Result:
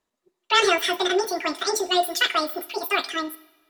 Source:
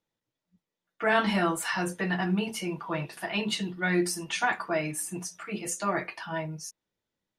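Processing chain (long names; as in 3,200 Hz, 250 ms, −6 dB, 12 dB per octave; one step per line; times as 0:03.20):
high-shelf EQ 6,100 Hz −8 dB
wrong playback speed 7.5 ips tape played at 15 ips
coupled-rooms reverb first 0.79 s, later 2.3 s, from −18 dB, DRR 14.5 dB
level +6.5 dB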